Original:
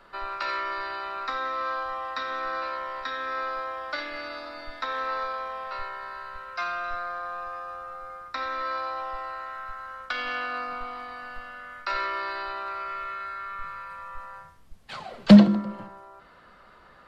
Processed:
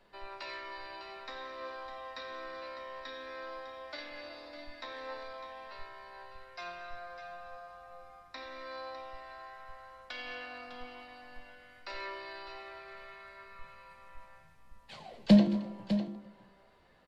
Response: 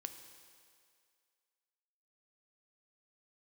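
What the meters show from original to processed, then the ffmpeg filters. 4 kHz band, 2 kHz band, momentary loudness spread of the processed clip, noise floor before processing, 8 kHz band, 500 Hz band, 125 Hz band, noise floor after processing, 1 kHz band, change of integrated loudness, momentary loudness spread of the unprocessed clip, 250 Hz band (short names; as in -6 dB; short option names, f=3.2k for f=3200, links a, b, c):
-8.0 dB, -12.0 dB, 17 LU, -53 dBFS, n/a, -7.5 dB, -8.5 dB, -60 dBFS, -14.5 dB, -9.0 dB, 10 LU, -8.5 dB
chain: -filter_complex "[0:a]equalizer=f=1.3k:w=2.9:g=-14.5,flanger=delay=9.9:depth=9.1:regen=68:speed=0.17:shape=sinusoidal,asplit=2[a][b];[b]aecho=0:1:222|603:0.106|0.299[c];[a][c]amix=inputs=2:normalize=0,volume=-3.5dB"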